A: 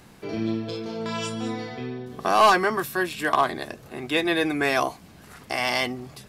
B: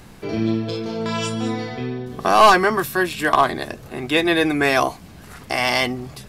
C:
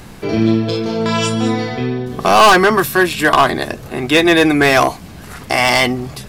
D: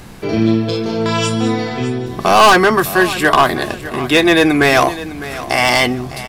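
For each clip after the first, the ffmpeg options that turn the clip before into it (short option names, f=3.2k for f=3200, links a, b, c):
-af "lowshelf=f=69:g=10.5,volume=5dB"
-af "volume=12.5dB,asoftclip=hard,volume=-12.5dB,volume=7.5dB"
-af "aecho=1:1:606|1212|1818:0.178|0.0551|0.0171"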